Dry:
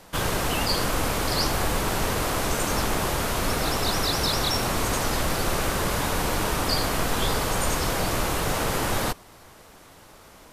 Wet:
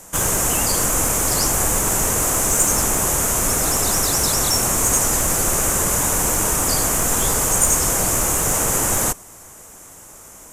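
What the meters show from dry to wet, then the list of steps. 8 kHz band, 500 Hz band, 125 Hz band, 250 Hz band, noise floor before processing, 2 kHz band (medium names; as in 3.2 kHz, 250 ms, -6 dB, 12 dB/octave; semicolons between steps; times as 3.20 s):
+15.5 dB, +2.5 dB, +2.5 dB, +2.5 dB, -50 dBFS, +1.5 dB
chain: resonant high shelf 5.5 kHz +9 dB, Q 3; in parallel at -8 dB: one-sided clip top -21 dBFS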